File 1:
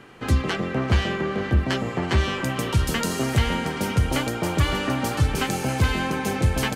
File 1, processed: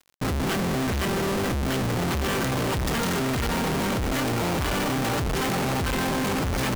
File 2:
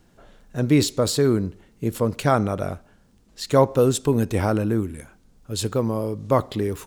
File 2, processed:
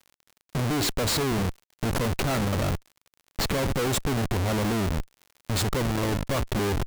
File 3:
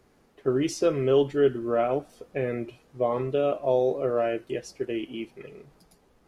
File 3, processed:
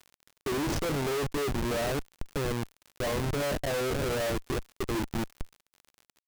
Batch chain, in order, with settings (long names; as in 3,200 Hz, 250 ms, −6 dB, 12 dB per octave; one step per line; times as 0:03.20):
comparator with hysteresis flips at −30.5 dBFS
surface crackle 68 per second −38 dBFS
level −2 dB